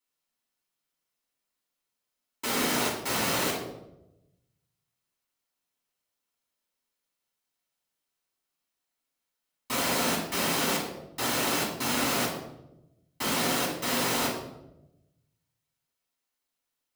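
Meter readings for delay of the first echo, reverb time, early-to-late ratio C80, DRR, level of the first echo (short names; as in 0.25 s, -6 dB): none, 0.90 s, 7.0 dB, -6.0 dB, none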